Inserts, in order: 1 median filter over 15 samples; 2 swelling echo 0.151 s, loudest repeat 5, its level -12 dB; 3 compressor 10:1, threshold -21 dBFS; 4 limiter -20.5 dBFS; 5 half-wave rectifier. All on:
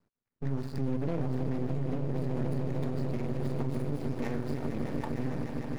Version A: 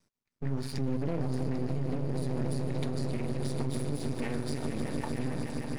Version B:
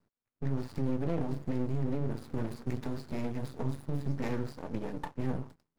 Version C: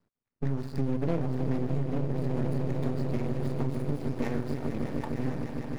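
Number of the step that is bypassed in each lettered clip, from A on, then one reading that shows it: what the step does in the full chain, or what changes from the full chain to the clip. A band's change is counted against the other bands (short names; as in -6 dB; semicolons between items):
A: 1, 4 kHz band +8.0 dB; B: 2, momentary loudness spread change +3 LU; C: 4, mean gain reduction 1.5 dB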